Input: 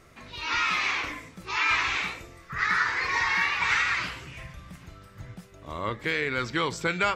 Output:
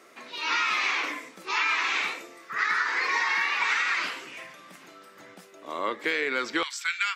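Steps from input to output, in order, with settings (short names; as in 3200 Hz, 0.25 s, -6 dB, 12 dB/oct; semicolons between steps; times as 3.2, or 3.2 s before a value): HPF 270 Hz 24 dB/oct, from 6.63 s 1500 Hz; compressor, threshold -25 dBFS, peak gain reduction 5.5 dB; gain +3 dB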